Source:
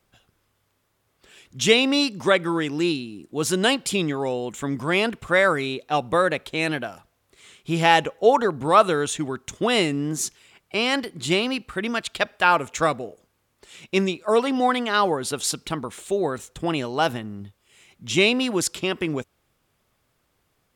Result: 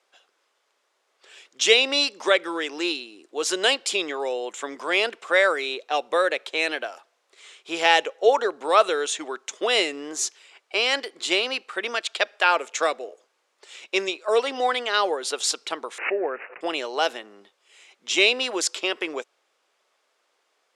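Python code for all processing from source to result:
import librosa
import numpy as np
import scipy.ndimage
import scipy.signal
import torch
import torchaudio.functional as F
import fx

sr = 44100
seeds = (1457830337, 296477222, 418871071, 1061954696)

y = fx.chain(x, sr, fx.resample_bad(factor=8, down='none', up='filtered'),
    fx.pre_swell(db_per_s=130.0), at=(15.98, 16.61))
y = scipy.signal.sosfilt(scipy.signal.butter(4, 420.0, 'highpass', fs=sr, output='sos'), y)
y = fx.dynamic_eq(y, sr, hz=1000.0, q=1.1, threshold_db=-33.0, ratio=4.0, max_db=-6)
y = scipy.signal.sosfilt(scipy.signal.cheby1(2, 1.0, 6500.0, 'lowpass', fs=sr, output='sos'), y)
y = y * librosa.db_to_amplitude(3.0)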